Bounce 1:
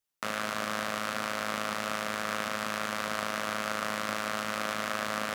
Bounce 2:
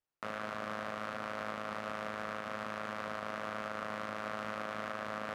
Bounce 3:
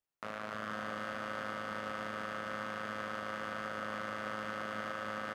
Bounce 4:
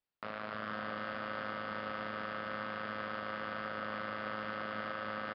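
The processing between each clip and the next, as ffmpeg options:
-af "lowpass=f=1.2k:p=1,equalizer=f=220:w=1.2:g=-3,alimiter=level_in=1.5dB:limit=-24dB:level=0:latency=1:release=304,volume=-1.5dB,volume=1.5dB"
-af "aecho=1:1:290|493|635.1|734.6|804.2:0.631|0.398|0.251|0.158|0.1,volume=-2dB"
-af "aresample=11025,aresample=44100"

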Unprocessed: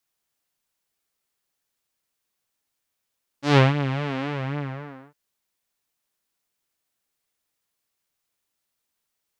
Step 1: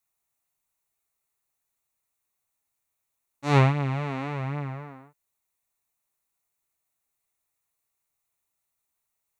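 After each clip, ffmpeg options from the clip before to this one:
-af "equalizer=f=200:t=o:w=0.33:g=-10,equalizer=f=315:t=o:w=0.33:g=-7,equalizer=f=500:t=o:w=0.33:g=-8,equalizer=f=1.6k:t=o:w=0.33:g=-8,equalizer=f=3.15k:t=o:w=0.33:g=-11,equalizer=f=5k:t=o:w=0.33:g=-12"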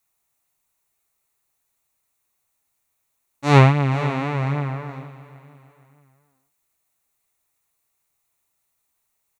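-af "aecho=1:1:467|934|1401:0.15|0.0598|0.0239,volume=7dB"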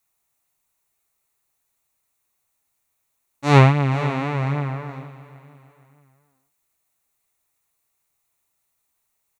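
-af anull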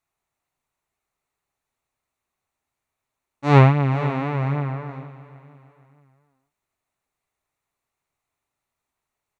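-af "aemphasis=mode=reproduction:type=75kf"

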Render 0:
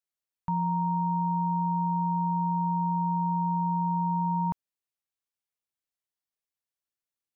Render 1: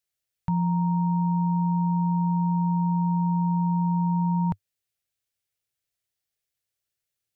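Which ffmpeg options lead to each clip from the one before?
-af "equalizer=f=100:t=o:w=0.67:g=8,equalizer=f=250:t=o:w=0.67:g=-8,equalizer=f=1k:t=o:w=0.67:g=-11,volume=7.5dB"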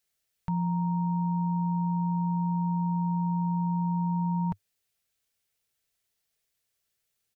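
-af "aecho=1:1:4.5:0.32,alimiter=level_in=3.5dB:limit=-24dB:level=0:latency=1:release=46,volume=-3.5dB,acontrast=23"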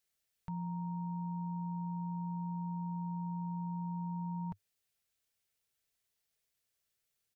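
-af "alimiter=level_in=5.5dB:limit=-24dB:level=0:latency=1:release=73,volume=-5.5dB,volume=-4dB"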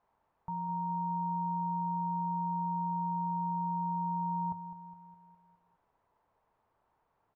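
-filter_complex "[0:a]aeval=exprs='val(0)+0.5*0.00112*sgn(val(0))':c=same,lowpass=f=950:t=q:w=4.4,asplit=2[a][b];[b]aecho=0:1:206|412|618|824|1030|1236:0.224|0.125|0.0702|0.0393|0.022|0.0123[c];[a][c]amix=inputs=2:normalize=0,volume=-3.5dB"

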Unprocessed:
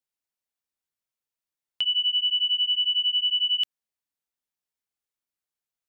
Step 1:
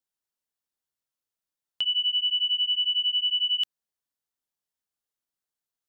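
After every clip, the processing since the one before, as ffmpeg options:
-af "equalizer=f=2.3k:t=o:w=0.41:g=-5.5"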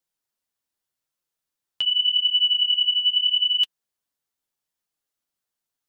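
-af "flanger=delay=5.7:depth=4.9:regen=-27:speed=0.83:shape=sinusoidal,volume=8dB"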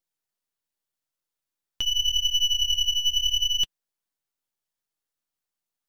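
-af "aeval=exprs='if(lt(val(0),0),0.251*val(0),val(0))':c=same"

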